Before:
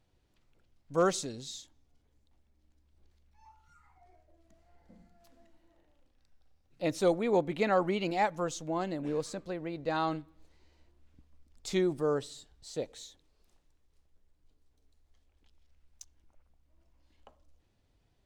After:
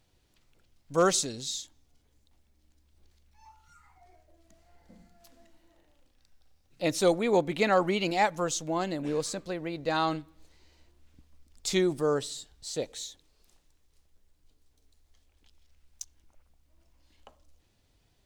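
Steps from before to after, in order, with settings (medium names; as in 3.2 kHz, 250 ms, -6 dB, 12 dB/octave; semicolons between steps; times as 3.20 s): treble shelf 2.6 kHz +8 dB; trim +2.5 dB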